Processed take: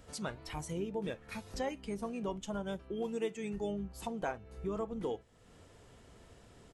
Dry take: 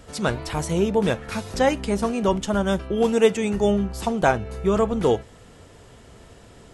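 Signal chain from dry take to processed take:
pitch-shifted copies added −5 semitones −12 dB
noise reduction from a noise print of the clip's start 7 dB
downward compressor 2 to 1, threshold −41 dBFS, peak gain reduction 16.5 dB
level −4 dB

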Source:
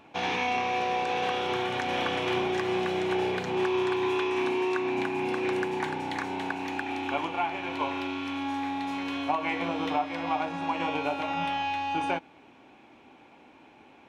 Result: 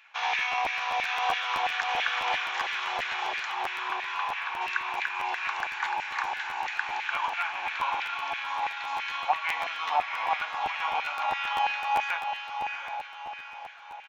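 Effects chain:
parametric band 310 Hz −13 dB 1.5 octaves
downsampling to 16,000 Hz
0:03.54–0:04.61: high-frequency loss of the air 220 metres
feedback delay with all-pass diffusion 730 ms, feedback 48%, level −5.5 dB
auto-filter high-pass saw down 3 Hz 730–1,900 Hz
regular buffer underruns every 0.13 s, samples 512, repeat, from 0:00.38

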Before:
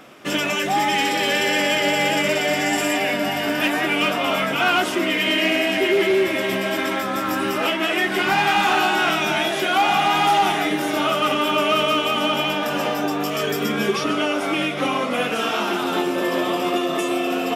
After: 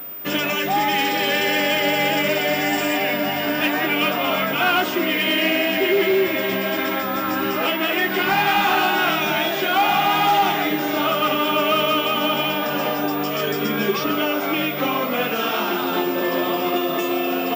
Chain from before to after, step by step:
switching amplifier with a slow clock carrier 15,000 Hz

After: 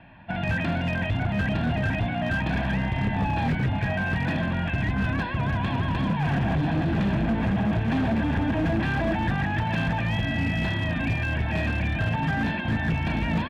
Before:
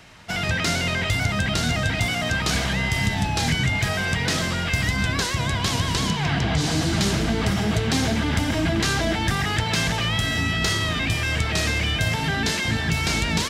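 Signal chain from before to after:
inverse Chebyshev low-pass filter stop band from 5,600 Hz, stop band 40 dB
parametric band 310 Hz +9.5 dB 1.9 octaves
comb filter 1.2 ms, depth 84%
hard clipping −13 dBFS, distortion −13 dB
level −7 dB

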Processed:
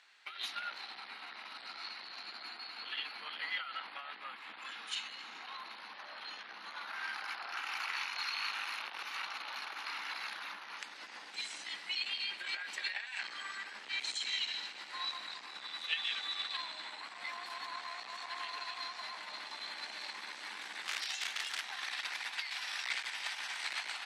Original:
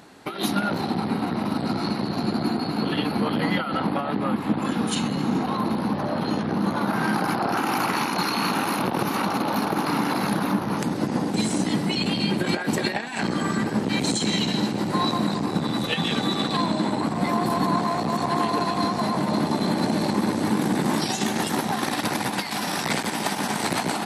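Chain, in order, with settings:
0:20.87–0:21.64: wrap-around overflow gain 17 dB
four-pole ladder band-pass 2,900 Hz, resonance 20%
level +3.5 dB

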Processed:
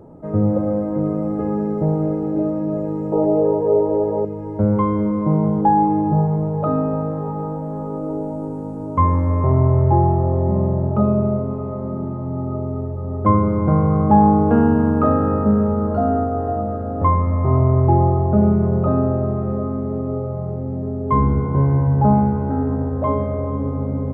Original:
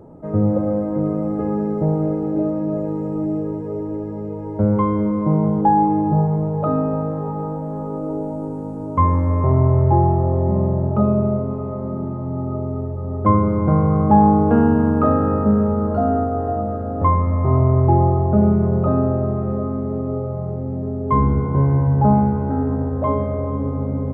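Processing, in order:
0:03.12–0:04.25: flat-topped bell 640 Hz +13.5 dB

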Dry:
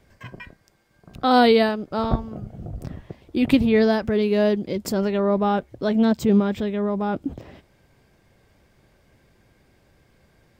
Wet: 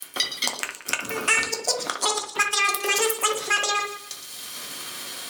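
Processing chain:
slices reordered back to front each 316 ms, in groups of 3
downward expander −54 dBFS
parametric band 420 Hz −8.5 dB 0.74 octaves
mains-hum notches 50/100/150/200/250 Hz
in parallel at −1.5 dB: downward compressor 20 to 1, threshold −32 dBFS, peak gain reduction 19.5 dB
on the sum: gain into a clipping stage and back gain 14.5 dB
meter weighting curve ITU-R 468
gate with flip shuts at −12 dBFS, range −41 dB
delay that swaps between a low-pass and a high-pass 116 ms, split 1,500 Hz, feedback 52%, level −6 dB
rectangular room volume 53 cubic metres, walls mixed, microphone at 0.43 metres
wrong playback speed 7.5 ips tape played at 15 ips
multiband upward and downward compressor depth 70%
level +5 dB

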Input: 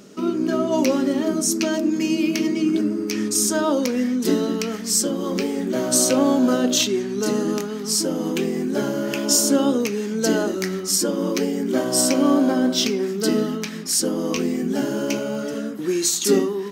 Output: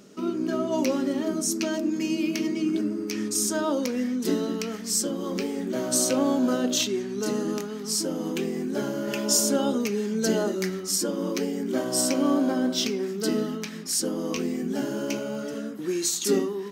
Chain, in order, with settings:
0:09.07–0:10.70: comb filter 5 ms, depth 56%
level −5.5 dB

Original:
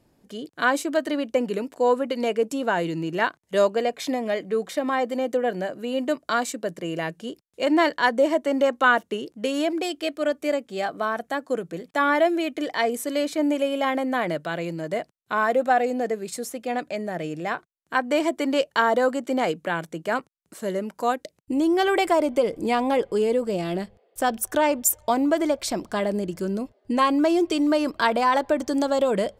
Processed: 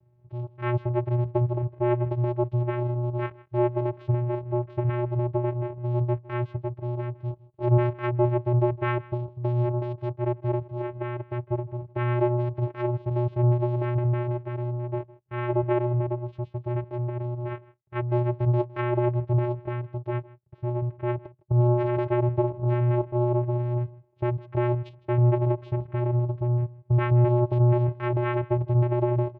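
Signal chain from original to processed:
high-shelf EQ 5,900 Hz −11.5 dB
channel vocoder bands 4, square 121 Hz
high-frequency loss of the air 390 metres
single-tap delay 159 ms −21.5 dB

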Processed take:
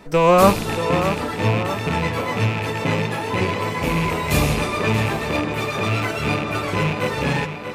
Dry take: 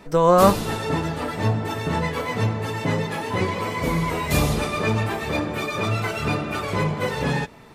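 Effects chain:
loose part that buzzes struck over −26 dBFS, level −18 dBFS
on a send: tape delay 632 ms, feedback 56%, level −8 dB, low-pass 5,900 Hz
on the sum: level +1.5 dB

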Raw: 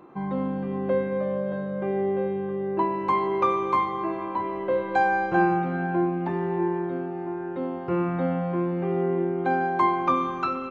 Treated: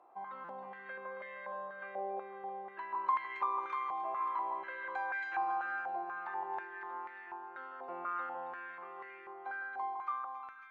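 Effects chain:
fade-out on the ending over 2.58 s
spectral tilt +4.5 dB per octave
downward compressor 2.5 to 1, threshold −28 dBFS, peak gain reduction 7.5 dB
on a send: echo with a time of its own for lows and highs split 1,500 Hz, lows 158 ms, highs 275 ms, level −4 dB
on the sum: buffer that repeats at 0:00.44, samples 256, times 8
band-pass on a step sequencer 4.1 Hz 730–1,900 Hz
level −1 dB

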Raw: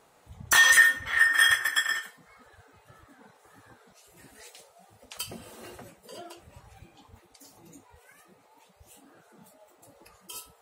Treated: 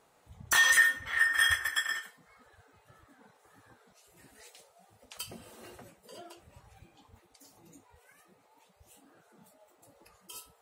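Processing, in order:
0:01.31–0:01.83: low shelf with overshoot 110 Hz +9.5 dB, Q 3
level −5 dB

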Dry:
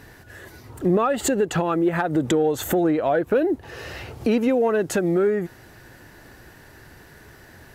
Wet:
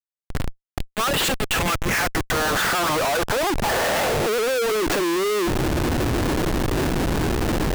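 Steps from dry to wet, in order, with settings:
mid-hump overdrive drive 22 dB, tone 1,200 Hz, clips at −10 dBFS
high-pass filter sweep 3,200 Hz → 290 Hz, 0:01.37–0:05.07
comparator with hysteresis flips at −32 dBFS
level −1.5 dB

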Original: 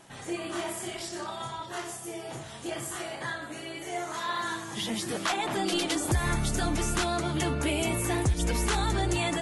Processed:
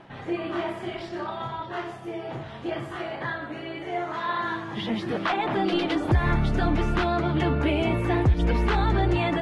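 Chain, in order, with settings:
reversed playback
upward compression, threshold −41 dBFS
reversed playback
high-frequency loss of the air 350 metres
level +6 dB

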